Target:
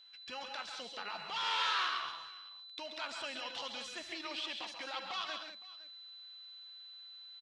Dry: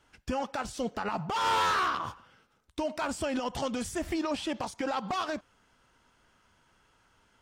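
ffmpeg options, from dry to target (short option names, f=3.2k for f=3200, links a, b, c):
-af "bandpass=f=3.7k:t=q:w=1.5:csg=0,aemphasis=mode=reproduction:type=50fm,aeval=exprs='val(0)+0.001*sin(2*PI*4000*n/s)':c=same,aecho=1:1:77|132|138|187|512:0.106|0.335|0.355|0.335|0.1,volume=3.5dB"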